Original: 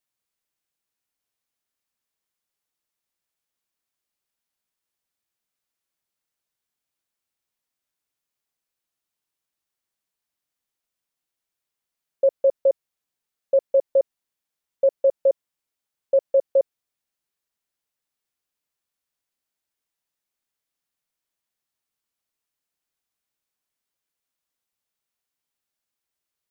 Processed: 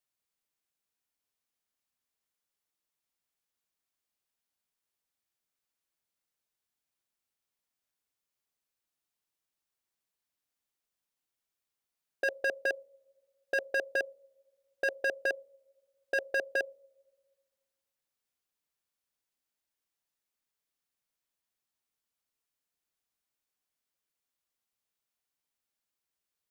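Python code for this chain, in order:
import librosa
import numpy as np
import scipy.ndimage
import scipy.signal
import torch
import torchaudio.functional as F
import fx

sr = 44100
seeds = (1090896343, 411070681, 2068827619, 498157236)

y = fx.rev_double_slope(x, sr, seeds[0], early_s=0.42, late_s=1.7, knee_db=-18, drr_db=20.0)
y = 10.0 ** (-18.0 / 20.0) * (np.abs((y / 10.0 ** (-18.0 / 20.0) + 3.0) % 4.0 - 2.0) - 1.0)
y = y * librosa.db_to_amplitude(-3.5)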